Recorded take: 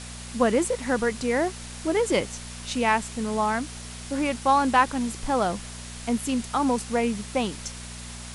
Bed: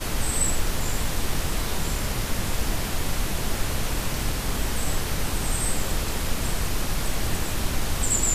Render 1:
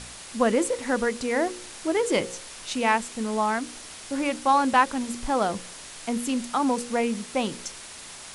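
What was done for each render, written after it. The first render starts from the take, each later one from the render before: de-hum 60 Hz, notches 9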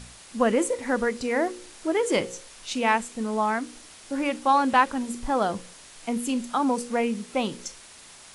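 noise print and reduce 6 dB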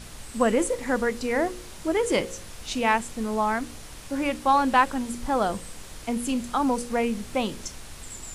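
add bed -17.5 dB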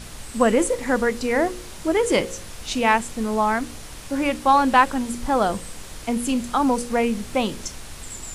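gain +4 dB

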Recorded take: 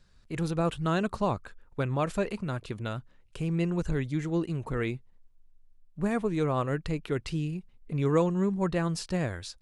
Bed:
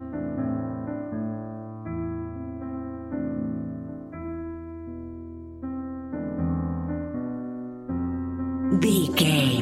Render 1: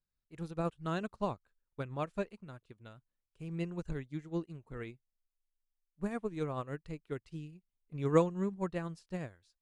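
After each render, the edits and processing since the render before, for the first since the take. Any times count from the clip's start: upward expander 2.5:1, over -40 dBFS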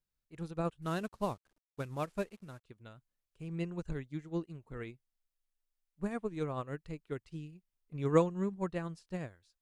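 0.82–2.64 CVSD 64 kbps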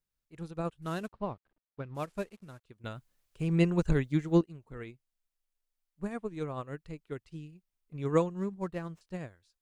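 1.12–1.95 air absorption 350 m; 2.84–4.41 gain +12 dB; 8.32–9.01 median filter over 9 samples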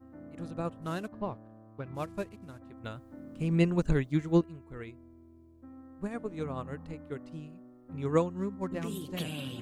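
add bed -17.5 dB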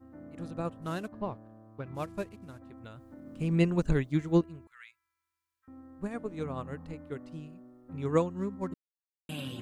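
2.71–3.26 compressor 3:1, threshold -44 dBFS; 4.67–5.68 inverse Chebyshev high-pass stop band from 690 Hz; 8.74–9.29 mute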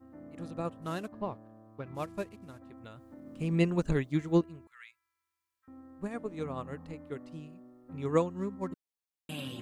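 low shelf 120 Hz -6 dB; notch 1500 Hz, Q 24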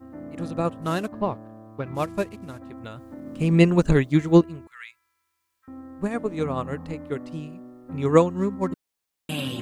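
gain +10.5 dB

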